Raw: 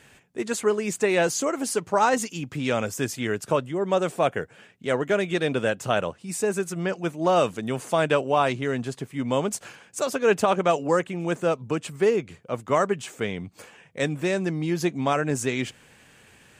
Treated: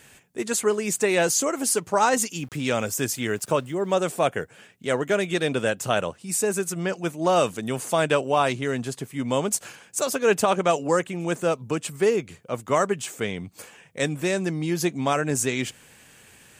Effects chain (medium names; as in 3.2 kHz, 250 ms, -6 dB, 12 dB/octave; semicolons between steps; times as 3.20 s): treble shelf 6.4 kHz +11 dB; 2.39–3.99 s: small samples zeroed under -48.5 dBFS